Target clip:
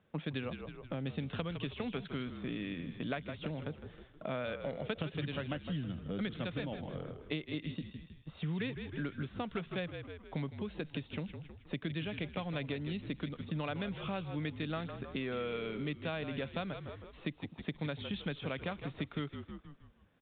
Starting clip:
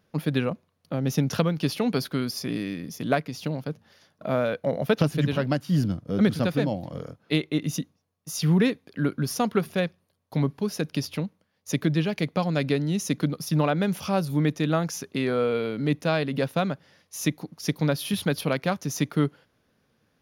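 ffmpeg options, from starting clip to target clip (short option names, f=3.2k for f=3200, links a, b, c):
-filter_complex "[0:a]asplit=6[a][b][c][d][e][f];[b]adelay=158,afreqshift=-46,volume=-12dB[g];[c]adelay=316,afreqshift=-92,volume=-18.9dB[h];[d]adelay=474,afreqshift=-138,volume=-25.9dB[i];[e]adelay=632,afreqshift=-184,volume=-32.8dB[j];[f]adelay=790,afreqshift=-230,volume=-39.7dB[k];[a][g][h][i][j][k]amix=inputs=6:normalize=0,acrossover=split=90|1900[l][m][n];[l]acompressor=threshold=-53dB:ratio=4[o];[m]acompressor=threshold=-34dB:ratio=4[p];[n]acompressor=threshold=-38dB:ratio=4[q];[o][p][q]amix=inputs=3:normalize=0,aresample=8000,aresample=44100,volume=-3.5dB"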